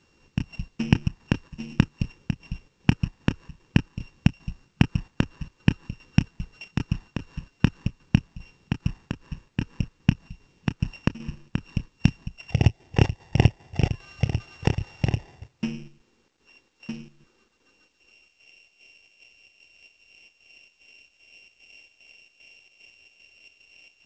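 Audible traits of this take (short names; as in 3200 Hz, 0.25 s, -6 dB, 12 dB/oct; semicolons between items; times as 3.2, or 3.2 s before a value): a buzz of ramps at a fixed pitch in blocks of 16 samples; chopped level 2.5 Hz, depth 60%, duty 70%; a quantiser's noise floor 12-bit, dither none; G.722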